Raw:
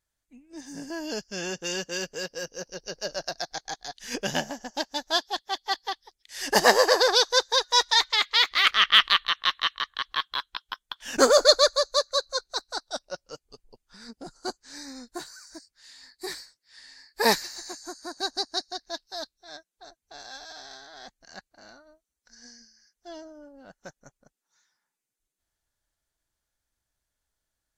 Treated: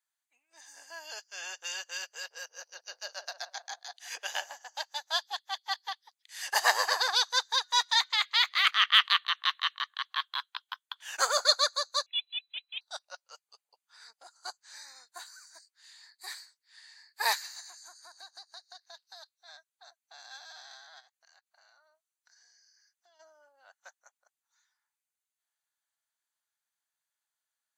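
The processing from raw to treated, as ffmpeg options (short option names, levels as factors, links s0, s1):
-filter_complex "[0:a]asettb=1/sr,asplit=3[s0][s1][s2];[s0]atrim=end=2.134[s3];[s1]atrim=start=2.13:end=4.46,asetpts=PTS-STARTPTS,afade=t=in:d=0.004:c=qsin,afade=t=out:st=2.326:d=0.004:c=qsin,asplit=2[s4][s5];[s5]adelay=173,lowpass=f=950:p=1,volume=0.316,asplit=2[s6][s7];[s7]adelay=173,lowpass=f=950:p=1,volume=0.3,asplit=2[s8][s9];[s9]adelay=173,lowpass=f=950:p=1,volume=0.3[s10];[s4][s6][s8][s10]amix=inputs=4:normalize=0,atrim=end_sample=102753[s11];[s2]atrim=start=4.456[s12];[s3][s11]acrossfade=d=0.004:c1=hsin:c2=qsin[s13];[s13][s12]acrossfade=d=0.004:c1=qsin:c2=hsin,asettb=1/sr,asplit=3[s14][s15][s16];[s14]atrim=end=12.064[s17];[s15]atrim=start=12.06:end=12.81,asetpts=PTS-STARTPTS,afade=t=in:d=0.004:c=qsin,afade=t=out:st=0.746:d=0.004:c=qsin,lowpass=f=3400:t=q:w=0.5098,lowpass=f=3400:t=q:w=0.6013,lowpass=f=3400:t=q:w=0.9,lowpass=f=3400:t=q:w=2.563,afreqshift=-4000[s18];[s16]atrim=start=12.806[s19];[s17][s18]acrossfade=d=0.004:c1=hsin:c2=qsin[s20];[s20][s19]acrossfade=d=0.004:c1=qsin:c2=hsin,asettb=1/sr,asplit=3[s21][s22][s23];[s21]atrim=end=17.604[s24];[s22]atrim=start=17.6:end=20.31,asetpts=PTS-STARTPTS,afade=t=in:d=0.004:c=qsin,afade=t=out:st=2.706:d=0.004:c=qsin,acompressor=threshold=0.0112:ratio=6:attack=3.2:release=140:knee=1:detection=peak[s25];[s23]atrim=start=20.306[s26];[s24][s25]acrossfade=d=0.004:c1=hsin:c2=qsin[s27];[s27][s26]acrossfade=d=0.004:c1=qsin:c2=hsin,asplit=3[s28][s29][s30];[s28]afade=t=out:st=20.99:d=0.02[s31];[s29]acompressor=threshold=0.00224:ratio=16:attack=3.2:release=140:knee=1:detection=peak,afade=t=in:st=20.99:d=0.02,afade=t=out:st=23.19:d=0.02[s32];[s30]afade=t=in:st=23.19:d=0.02[s33];[s31][s32][s33]amix=inputs=3:normalize=0,highpass=f=790:w=0.5412,highpass=f=790:w=1.3066,bandreject=f=5400:w=6.5,volume=0.631"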